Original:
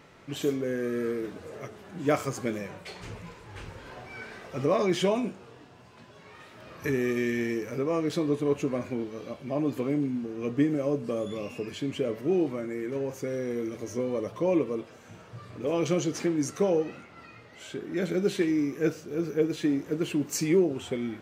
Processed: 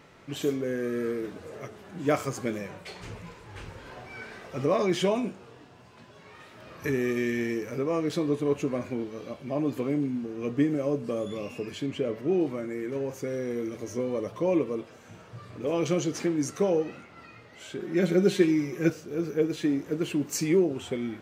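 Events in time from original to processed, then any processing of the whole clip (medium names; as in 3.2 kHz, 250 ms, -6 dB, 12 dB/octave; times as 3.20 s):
11.86–12.41 s: treble shelf 8 kHz -10 dB
17.79–18.90 s: comb 5.5 ms, depth 94%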